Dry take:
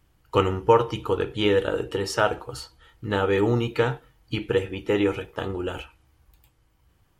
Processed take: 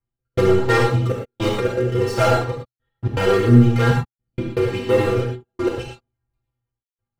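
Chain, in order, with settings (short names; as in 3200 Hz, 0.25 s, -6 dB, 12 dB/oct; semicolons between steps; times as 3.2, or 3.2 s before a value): LPF 1000 Hz 6 dB/oct; sample leveller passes 5; rotary speaker horn 1.2 Hz, later 6 Hz, at 5; metallic resonator 120 Hz, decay 0.25 s, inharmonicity 0.008; step gate "x.x.xxxxxxxx..." 161 bpm -60 dB; non-linear reverb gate 0.14 s flat, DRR -1 dB; gain +4 dB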